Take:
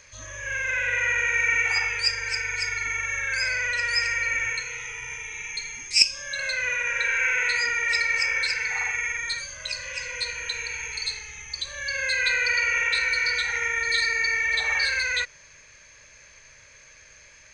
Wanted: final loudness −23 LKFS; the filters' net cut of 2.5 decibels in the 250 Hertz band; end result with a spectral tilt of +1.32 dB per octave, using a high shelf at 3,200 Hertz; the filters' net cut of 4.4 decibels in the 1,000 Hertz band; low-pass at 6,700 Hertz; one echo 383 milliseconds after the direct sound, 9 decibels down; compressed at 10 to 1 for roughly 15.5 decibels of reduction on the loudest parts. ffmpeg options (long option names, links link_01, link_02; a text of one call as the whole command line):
ffmpeg -i in.wav -af "lowpass=6700,equalizer=frequency=250:width_type=o:gain=-3.5,equalizer=frequency=1000:width_type=o:gain=-8,highshelf=frequency=3200:gain=3.5,acompressor=threshold=-26dB:ratio=10,aecho=1:1:383:0.355,volume=5dB" out.wav